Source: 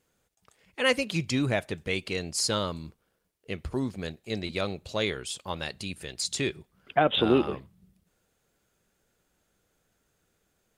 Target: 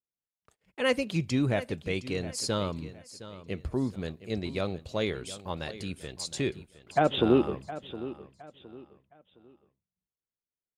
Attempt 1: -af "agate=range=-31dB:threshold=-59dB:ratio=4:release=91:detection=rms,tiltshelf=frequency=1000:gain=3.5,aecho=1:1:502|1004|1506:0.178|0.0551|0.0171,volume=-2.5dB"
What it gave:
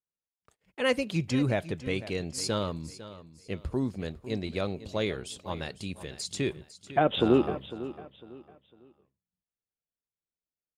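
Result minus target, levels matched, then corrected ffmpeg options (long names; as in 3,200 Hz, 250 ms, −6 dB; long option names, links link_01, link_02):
echo 212 ms early
-af "agate=range=-31dB:threshold=-59dB:ratio=4:release=91:detection=rms,tiltshelf=frequency=1000:gain=3.5,aecho=1:1:714|1428|2142:0.178|0.0551|0.0171,volume=-2.5dB"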